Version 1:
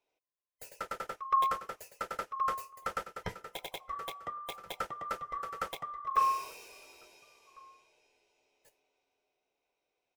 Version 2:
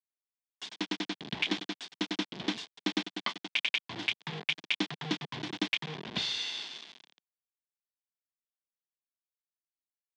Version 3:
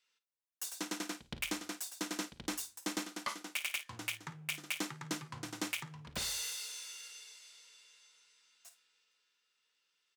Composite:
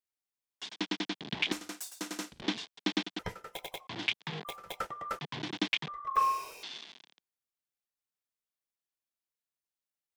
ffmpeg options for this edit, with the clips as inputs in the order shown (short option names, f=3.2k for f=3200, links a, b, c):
-filter_complex "[0:a]asplit=3[a][b][c];[1:a]asplit=5[d][e][f][g][h];[d]atrim=end=1.522[i];[2:a]atrim=start=1.518:end=2.422[j];[e]atrim=start=2.418:end=3.192[k];[a]atrim=start=3.188:end=3.872[l];[f]atrim=start=3.868:end=4.452[m];[b]atrim=start=4.448:end=5.192[n];[g]atrim=start=5.188:end=5.882[o];[c]atrim=start=5.878:end=6.632[p];[h]atrim=start=6.628[q];[i][j]acrossfade=d=0.004:c1=hsin:c2=hsin[r];[r][k]acrossfade=d=0.004:c1=hsin:c2=hsin[s];[s][l]acrossfade=d=0.004:c1=hsin:c2=hsin[t];[t][m]acrossfade=d=0.004:c1=hsin:c2=hsin[u];[u][n]acrossfade=d=0.004:c1=hsin:c2=hsin[v];[v][o]acrossfade=d=0.004:c1=hsin:c2=hsin[w];[w][p]acrossfade=d=0.004:c1=hsin:c2=hsin[x];[x][q]acrossfade=d=0.004:c1=hsin:c2=hsin"